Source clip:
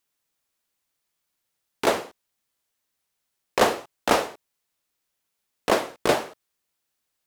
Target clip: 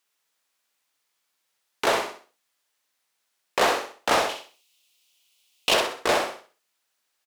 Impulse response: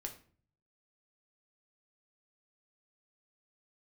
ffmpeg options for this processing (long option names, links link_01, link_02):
-filter_complex "[0:a]asettb=1/sr,asplit=3[link_01][link_02][link_03];[link_01]atrim=end=4.294[link_04];[link_02]atrim=start=4.29:end=5.74,asetpts=PTS-STARTPTS,afade=type=in:duration=0.004:curve=qsin,afade=type=out:start_time=1.446:duration=0.004:curve=qsin,highshelf=frequency=2200:width_type=q:width=3:gain=8.5[link_05];[link_03]atrim=start=5.736[link_06];[link_04][link_05]acrossfade=duration=0.004:curve1=hsin:curve2=qsin[link_07];[link_07][link_06]acrossfade=duration=0.004:curve1=qsin:curve2=hsin,asplit=2[link_08][link_09];[link_09]highpass=frequency=720:poles=1,volume=19dB,asoftclip=type=tanh:threshold=-3dB[link_10];[link_08][link_10]amix=inputs=2:normalize=0,lowpass=frequency=6700:poles=1,volume=-6dB,aecho=1:1:64|128|192|256:0.501|0.165|0.0546|0.018,volume=-8dB"